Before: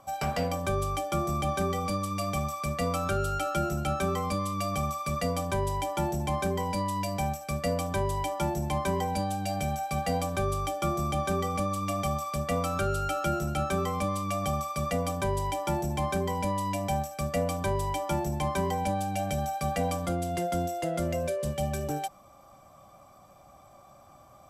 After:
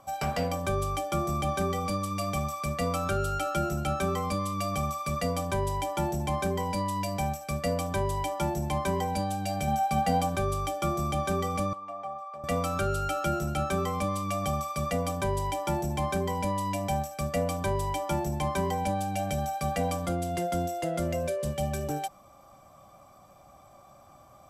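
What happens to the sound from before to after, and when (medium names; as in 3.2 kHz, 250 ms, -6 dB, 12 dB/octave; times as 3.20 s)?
9.67–10.35 s: small resonant body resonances 210/780/1500/3100 Hz, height 7 dB
11.73–12.44 s: band-pass filter 850 Hz, Q 2.7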